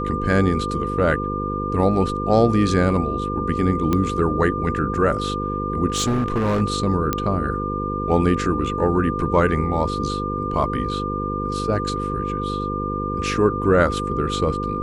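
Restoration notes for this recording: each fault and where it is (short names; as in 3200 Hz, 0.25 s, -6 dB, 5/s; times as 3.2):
buzz 50 Hz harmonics 10 -27 dBFS
tone 1200 Hz -26 dBFS
3.93 pop -8 dBFS
5.9–6.62 clipped -16.5 dBFS
7.13 pop -6 dBFS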